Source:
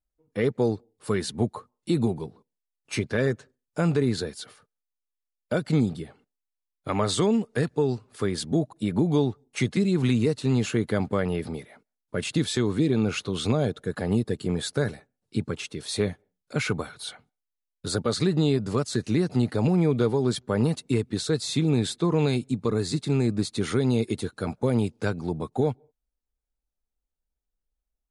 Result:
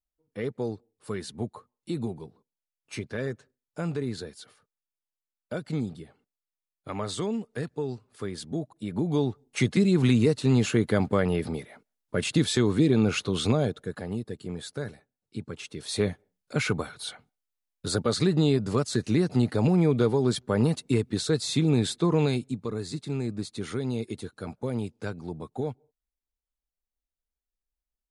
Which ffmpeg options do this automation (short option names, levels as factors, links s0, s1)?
-af "volume=3.16,afade=t=in:st=8.84:d=0.88:silence=0.354813,afade=t=out:st=13.37:d=0.73:silence=0.316228,afade=t=in:st=15.46:d=0.6:silence=0.375837,afade=t=out:st=22.15:d=0.51:silence=0.446684"